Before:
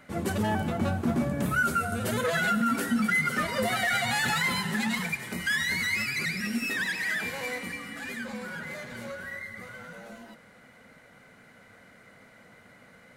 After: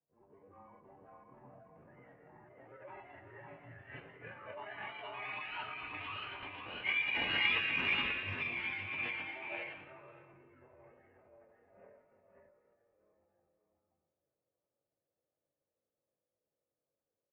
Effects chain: Doppler pass-by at 5.78 s, 16 m/s, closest 6.3 m; level-controlled noise filter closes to 330 Hz, open at -32.5 dBFS; bass shelf 400 Hz -9.5 dB; band-stop 1.5 kHz, Q 5.4; mistuned SSB -130 Hz 310–2100 Hz; chorus 0.16 Hz, delay 20 ms, depth 5.5 ms; tempo 0.76×; delay 536 ms -4 dB; on a send at -9 dB: reverberation, pre-delay 76 ms; on the sum: formant shift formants +6 st; trim +4 dB

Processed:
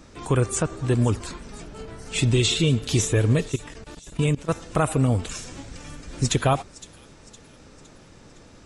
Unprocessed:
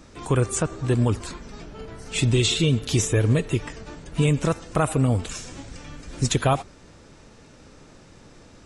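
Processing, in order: 3.47–4.49 s: level held to a coarse grid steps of 20 dB; feedback echo behind a high-pass 512 ms, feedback 49%, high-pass 3.8 kHz, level -15 dB

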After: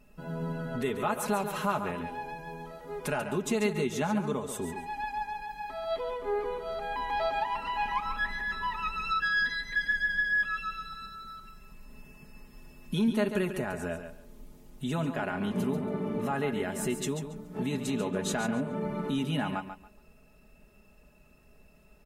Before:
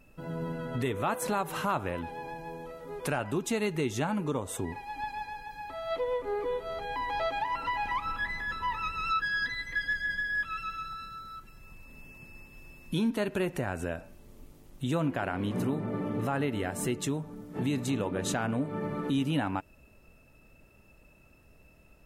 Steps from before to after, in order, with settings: comb 4.8 ms, depth 65%; feedback delay 140 ms, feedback 21%, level -9 dB; trim -2 dB

